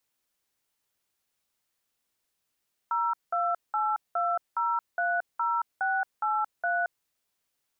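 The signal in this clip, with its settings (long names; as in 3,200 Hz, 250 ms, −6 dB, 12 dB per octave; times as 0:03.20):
touch tones "0282030683", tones 224 ms, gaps 190 ms, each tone −27 dBFS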